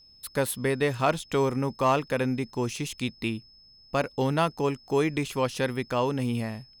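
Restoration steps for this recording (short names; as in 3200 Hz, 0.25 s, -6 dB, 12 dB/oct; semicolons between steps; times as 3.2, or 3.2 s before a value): clip repair -13.5 dBFS; notch 5200 Hz, Q 30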